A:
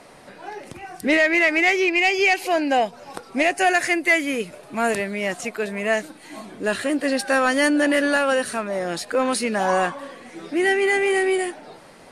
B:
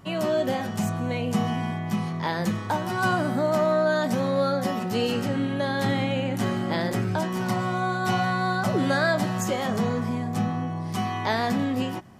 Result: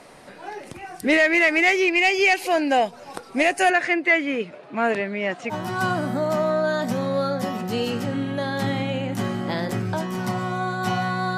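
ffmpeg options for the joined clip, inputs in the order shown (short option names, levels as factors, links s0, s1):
-filter_complex "[0:a]asettb=1/sr,asplit=3[s0][s1][s2];[s0]atrim=end=3.704[s3];[s1]atrim=start=3.7:end=5.55,asetpts=PTS-STARTPTS,afade=t=in:d=0.004:c=qsin,afade=t=out:st=1.846:d=0.004:c=qsin,highpass=130,lowpass=3200[s4];[s2]atrim=start=5.546[s5];[s3][s4]acrossfade=d=0.004:c1=hsin:c2=qsin[s6];[s6][s5]acrossfade=d=0.004:c1=qsin:c2=hsin,apad=whole_dur=11.37,atrim=end=11.37,atrim=end=5.55,asetpts=PTS-STARTPTS[s7];[1:a]atrim=start=2.71:end=8.59,asetpts=PTS-STARTPTS[s8];[s7][s8]acrossfade=d=0.06:c1=tri:c2=tri"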